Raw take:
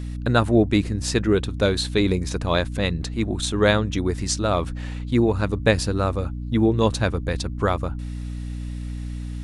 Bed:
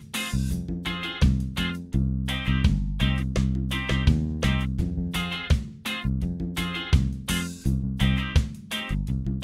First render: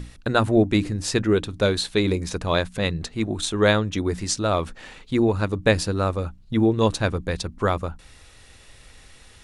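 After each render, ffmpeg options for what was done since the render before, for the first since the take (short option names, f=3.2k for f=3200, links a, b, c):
-af "bandreject=f=60:t=h:w=6,bandreject=f=120:t=h:w=6,bandreject=f=180:t=h:w=6,bandreject=f=240:t=h:w=6,bandreject=f=300:t=h:w=6"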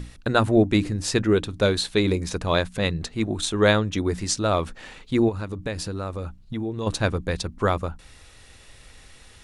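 -filter_complex "[0:a]asplit=3[a][b][c];[a]afade=t=out:st=5.28:d=0.02[d];[b]acompressor=threshold=-28dB:ratio=3:attack=3.2:release=140:knee=1:detection=peak,afade=t=in:st=5.28:d=0.02,afade=t=out:st=6.86:d=0.02[e];[c]afade=t=in:st=6.86:d=0.02[f];[d][e][f]amix=inputs=3:normalize=0"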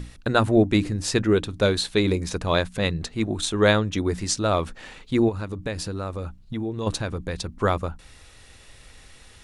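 -filter_complex "[0:a]asettb=1/sr,asplit=3[a][b][c];[a]atrim=end=7.014[d];[b]atrim=start=7.01:end=7.49,asetpts=PTS-STARTPTS,afade=t=in:d=0.004:c=qsin,afade=t=out:st=0.476:d=0.004:c=qsin,acompressor=threshold=-25dB:ratio=3:attack=3.2:release=140:knee=1:detection=peak[e];[c]atrim=start=7.486[f];[d][e]acrossfade=d=0.004:c1=hsin:c2=qsin[g];[g][f]acrossfade=d=0.004:c1=qsin:c2=hsin"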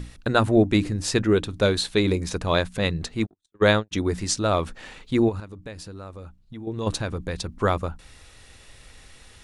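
-filter_complex "[0:a]asplit=3[a][b][c];[a]afade=t=out:st=3.25:d=0.02[d];[b]agate=range=-58dB:threshold=-21dB:ratio=16:release=100:detection=peak,afade=t=in:st=3.25:d=0.02,afade=t=out:st=3.91:d=0.02[e];[c]afade=t=in:st=3.91:d=0.02[f];[d][e][f]amix=inputs=3:normalize=0,asplit=3[g][h][i];[g]atrim=end=5.402[j];[h]atrim=start=5.398:end=6.672,asetpts=PTS-STARTPTS,volume=-8.5dB[k];[i]atrim=start=6.668[l];[j][k]acrossfade=d=0.004:c1=hsin:c2=hsin[m];[m][l]acrossfade=d=0.004:c1=hsin:c2=hsin"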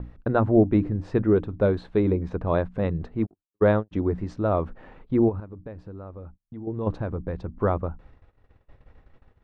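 -af "agate=range=-30dB:threshold=-46dB:ratio=16:detection=peak,lowpass=1k"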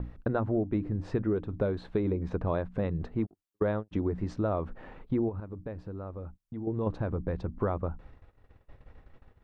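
-af "acompressor=threshold=-26dB:ratio=5"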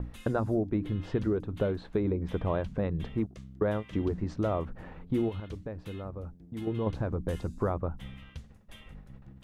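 -filter_complex "[1:a]volume=-23dB[a];[0:a][a]amix=inputs=2:normalize=0"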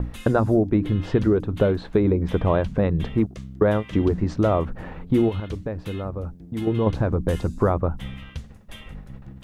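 -af "volume=9.5dB"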